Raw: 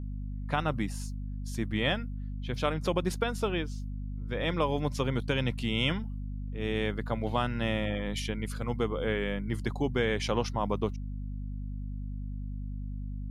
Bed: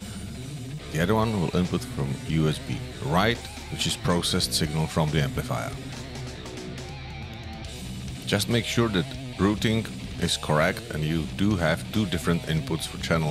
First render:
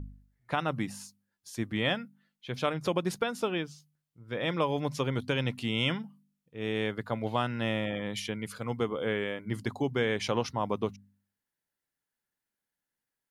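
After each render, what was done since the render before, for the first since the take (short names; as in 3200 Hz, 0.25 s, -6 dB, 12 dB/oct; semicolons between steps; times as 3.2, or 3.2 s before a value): de-hum 50 Hz, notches 5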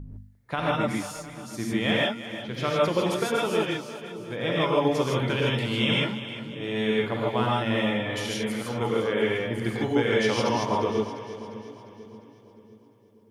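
split-band echo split 430 Hz, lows 0.581 s, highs 0.351 s, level -12.5 dB; non-linear reverb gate 0.18 s rising, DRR -4.5 dB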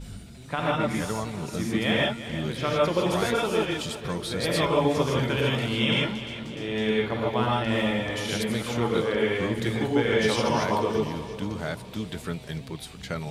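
add bed -8.5 dB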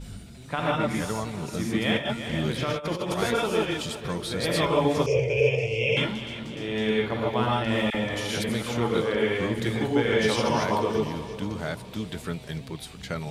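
1.97–3.19 negative-ratio compressor -27 dBFS, ratio -0.5; 5.06–5.97 EQ curve 130 Hz 0 dB, 270 Hz -25 dB, 460 Hz +10 dB, 950 Hz -14 dB, 1500 Hz -28 dB, 2500 Hz +8 dB, 3800 Hz -23 dB, 5400 Hz +4 dB, 12000 Hz -20 dB; 7.9–8.49 dispersion lows, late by 45 ms, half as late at 1200 Hz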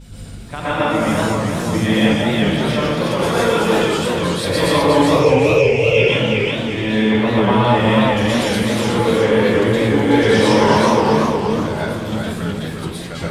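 plate-style reverb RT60 0.74 s, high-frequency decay 0.6×, pre-delay 0.105 s, DRR -8 dB; warbling echo 0.369 s, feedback 32%, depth 170 cents, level -4 dB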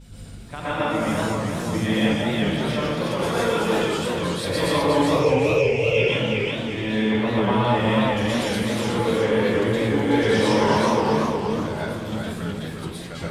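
gain -6 dB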